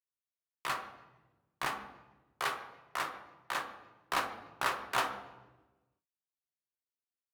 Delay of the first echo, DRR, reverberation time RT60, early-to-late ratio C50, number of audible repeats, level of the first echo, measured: no echo audible, 2.5 dB, 1.2 s, 8.5 dB, no echo audible, no echo audible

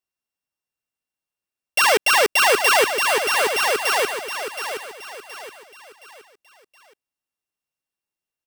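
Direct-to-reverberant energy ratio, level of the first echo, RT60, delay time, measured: no reverb audible, −8.5 dB, no reverb audible, 721 ms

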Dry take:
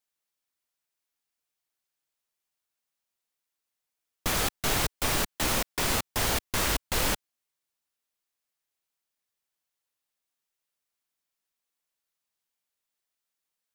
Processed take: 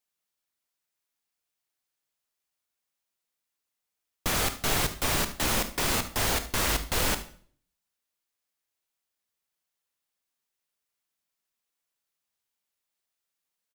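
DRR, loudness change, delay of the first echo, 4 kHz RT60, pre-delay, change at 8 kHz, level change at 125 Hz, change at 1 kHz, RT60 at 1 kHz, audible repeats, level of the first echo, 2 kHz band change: 9.5 dB, +0.5 dB, 74 ms, 0.45 s, 25 ms, +0.5 dB, +1.0 dB, +0.5 dB, 0.45 s, 1, −17.5 dB, +0.5 dB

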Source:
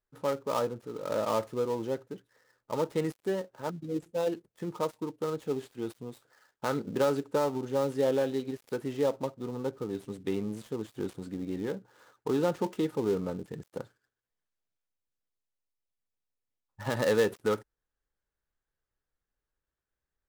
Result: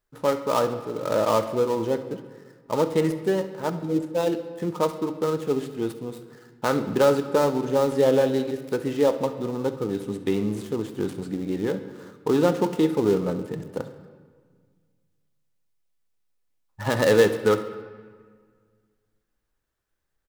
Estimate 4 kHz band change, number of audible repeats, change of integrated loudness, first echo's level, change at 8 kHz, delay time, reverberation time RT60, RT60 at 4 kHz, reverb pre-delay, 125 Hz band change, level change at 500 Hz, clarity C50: +8.0 dB, 1, +8.0 dB, −18.0 dB, +7.5 dB, 68 ms, 1.7 s, 1.1 s, 3 ms, +8.0 dB, +8.0 dB, 10.5 dB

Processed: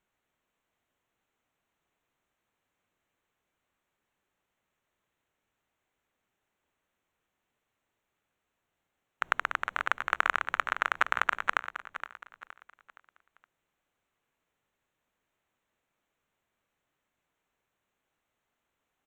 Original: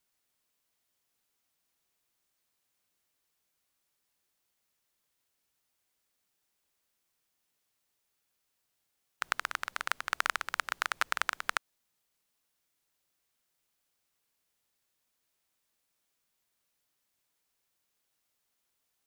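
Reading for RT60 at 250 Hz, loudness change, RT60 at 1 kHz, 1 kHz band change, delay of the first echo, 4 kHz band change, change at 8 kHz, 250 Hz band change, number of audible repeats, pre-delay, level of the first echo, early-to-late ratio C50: no reverb audible, +4.0 dB, no reverb audible, +5.5 dB, 468 ms, −2.5 dB, −8.5 dB, +6.0 dB, 3, no reverb audible, −12.0 dB, no reverb audible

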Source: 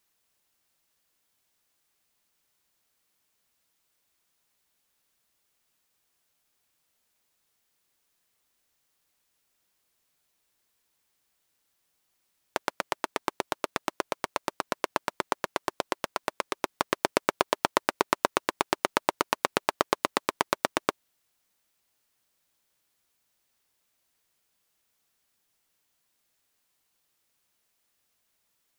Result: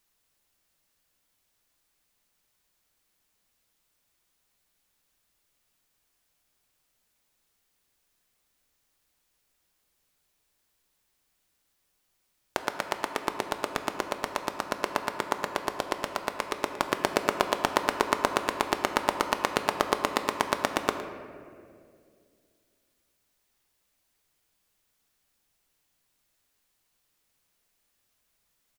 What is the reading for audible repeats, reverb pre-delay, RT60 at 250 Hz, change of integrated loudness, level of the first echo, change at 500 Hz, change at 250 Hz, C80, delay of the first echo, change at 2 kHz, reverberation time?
1, 3 ms, 2.7 s, +0.5 dB, −15.5 dB, +1.0 dB, +1.5 dB, 8.5 dB, 111 ms, +0.5 dB, 2.3 s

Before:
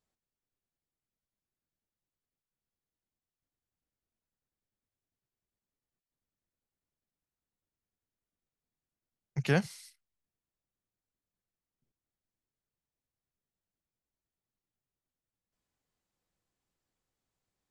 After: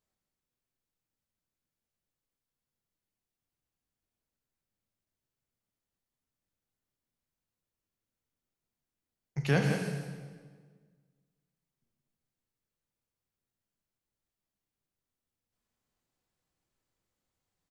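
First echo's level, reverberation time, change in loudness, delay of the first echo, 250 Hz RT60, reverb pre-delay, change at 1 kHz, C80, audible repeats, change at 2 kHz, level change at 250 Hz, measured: −7.5 dB, 1.6 s, 0.0 dB, 174 ms, 1.9 s, 20 ms, +1.5 dB, 3.0 dB, 1, +1.5 dB, +2.5 dB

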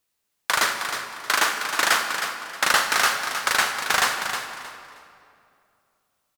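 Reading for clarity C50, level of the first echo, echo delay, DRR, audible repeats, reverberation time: 4.0 dB, −8.5 dB, 314 ms, 3.5 dB, 3, 2.5 s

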